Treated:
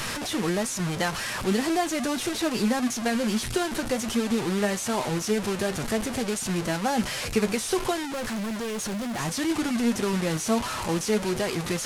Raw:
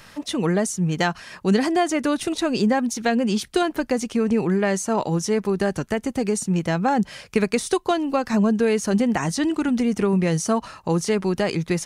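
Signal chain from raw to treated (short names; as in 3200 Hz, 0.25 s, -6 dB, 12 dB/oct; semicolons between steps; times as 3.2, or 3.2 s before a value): delta modulation 64 kbps, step -20 dBFS; flange 1.4 Hz, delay 7.7 ms, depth 2 ms, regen +56%; 8.13–9.19 hard clip -27.5 dBFS, distortion -13 dB; gain -1 dB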